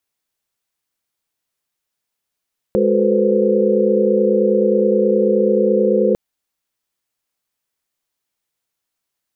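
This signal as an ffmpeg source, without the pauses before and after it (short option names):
-f lavfi -i "aevalsrc='0.119*(sin(2*PI*207.65*t)+sin(2*PI*369.99*t)+sin(2*PI*440*t)+sin(2*PI*493.88*t)+sin(2*PI*523.25*t))':d=3.4:s=44100"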